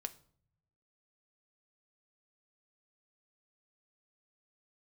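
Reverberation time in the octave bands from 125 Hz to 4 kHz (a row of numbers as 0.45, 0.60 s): 1.3, 1.0, 0.60, 0.55, 0.40, 0.40 s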